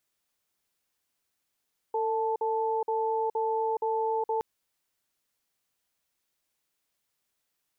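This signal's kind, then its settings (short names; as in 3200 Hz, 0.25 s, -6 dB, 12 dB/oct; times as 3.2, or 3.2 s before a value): cadence 449 Hz, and 877 Hz, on 0.42 s, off 0.05 s, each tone -28 dBFS 2.47 s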